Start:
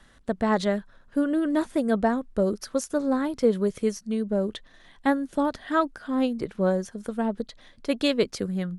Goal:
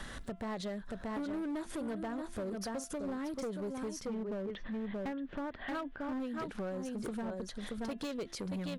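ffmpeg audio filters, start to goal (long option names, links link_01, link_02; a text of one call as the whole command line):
ffmpeg -i in.wav -filter_complex "[0:a]aecho=1:1:628:0.376,acompressor=threshold=-34dB:ratio=10,asettb=1/sr,asplit=3[link_01][link_02][link_03];[link_01]atrim=end=4.074[link_04];[link_02]atrim=start=4.07:end=6.2,asetpts=PTS-STARTPTS,afade=type=in:duration=0.004:curve=qsin,afade=type=out:start_time=2.126:duration=0.004:curve=qsin,lowpass=frequency=2900:width=0.5412,lowpass=frequency=2900:width=1.3066[link_05];[link_03]atrim=start=6.196[link_06];[link_04][link_05]acrossfade=duration=0.004:curve1=hsin:curve2=qsin[link_07];[link_07][link_06]acrossfade=duration=0.004:curve1=qsin:curve2=hsin,volume=35dB,asoftclip=hard,volume=-35dB,alimiter=level_in=22.5dB:limit=-24dB:level=0:latency=1:release=113,volume=-22.5dB,bandreject=frequency=340.5:width_type=h:width=4,bandreject=frequency=681:width_type=h:width=4,bandreject=frequency=1021.5:width_type=h:width=4,bandreject=frequency=1362:width_type=h:width=4,bandreject=frequency=1702.5:width_type=h:width=4,bandreject=frequency=2043:width_type=h:width=4,bandreject=frequency=2383.5:width_type=h:width=4,bandreject=frequency=2724:width_type=h:width=4,bandreject=frequency=3064.5:width_type=h:width=4,bandreject=frequency=3405:width_type=h:width=4,bandreject=frequency=3745.5:width_type=h:width=4,volume=12.5dB" out.wav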